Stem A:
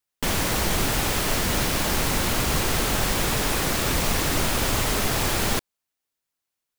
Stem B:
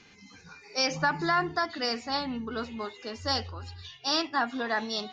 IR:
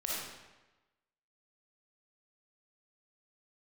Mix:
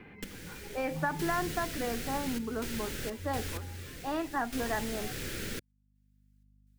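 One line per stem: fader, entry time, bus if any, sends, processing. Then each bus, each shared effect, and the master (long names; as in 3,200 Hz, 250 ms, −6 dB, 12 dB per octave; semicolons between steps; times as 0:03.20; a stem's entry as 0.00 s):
−15.0 dB, 0.00 s, no send, gate pattern "x....xxxxx.xx." 63 BPM −12 dB; flat-topped bell 870 Hz −16 dB 1.1 octaves; mains hum 50 Hz, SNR 33 dB
−1.0 dB, 0.00 s, no send, low-pass filter 2,000 Hz 24 dB per octave; parametric band 1,300 Hz −7 dB 0.87 octaves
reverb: not used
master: multiband upward and downward compressor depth 40%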